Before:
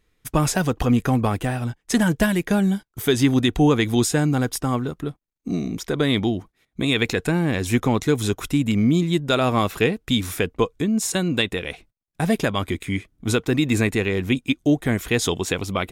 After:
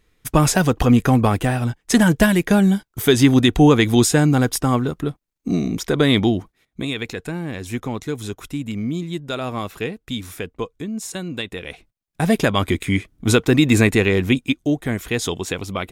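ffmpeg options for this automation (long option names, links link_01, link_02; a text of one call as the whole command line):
ffmpeg -i in.wav -af "volume=16.5dB,afade=type=out:start_time=6.36:duration=0.6:silence=0.281838,afade=type=in:start_time=11.45:duration=1.24:silence=0.251189,afade=type=out:start_time=14.14:duration=0.54:silence=0.446684" out.wav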